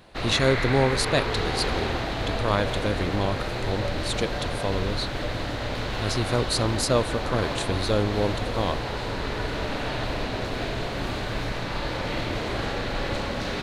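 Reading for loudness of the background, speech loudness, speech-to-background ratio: −29.0 LKFS, −27.5 LKFS, 1.5 dB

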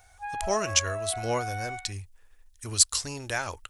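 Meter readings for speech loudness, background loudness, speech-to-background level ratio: −27.5 LKFS, −35.5 LKFS, 8.0 dB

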